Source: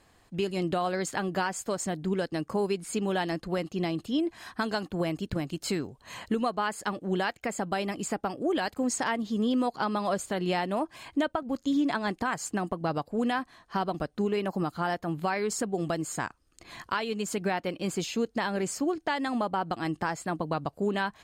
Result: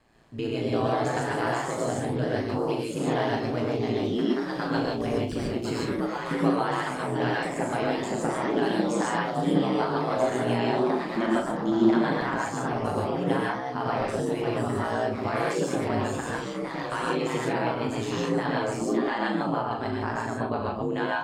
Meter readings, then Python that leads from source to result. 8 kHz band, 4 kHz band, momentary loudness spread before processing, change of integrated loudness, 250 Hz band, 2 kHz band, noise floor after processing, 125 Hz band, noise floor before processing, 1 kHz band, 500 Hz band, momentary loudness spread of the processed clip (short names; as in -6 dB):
-4.0 dB, +0.5 dB, 4 LU, +3.5 dB, +3.0 dB, +2.5 dB, -33 dBFS, +5.0 dB, -64 dBFS, +3.0 dB, +4.5 dB, 5 LU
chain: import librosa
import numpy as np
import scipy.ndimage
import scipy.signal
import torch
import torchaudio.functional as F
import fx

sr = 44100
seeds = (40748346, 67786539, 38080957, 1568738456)

y = fx.high_shelf(x, sr, hz=5100.0, db=-10.5)
y = fx.rev_gated(y, sr, seeds[0], gate_ms=170, shape='rising', drr_db=-2.5)
y = y * np.sin(2.0 * np.pi * 58.0 * np.arange(len(y)) / sr)
y = fx.doubler(y, sr, ms=39.0, db=-7.0)
y = fx.echo_pitch(y, sr, ms=270, semitones=2, count=2, db_per_echo=-6.0)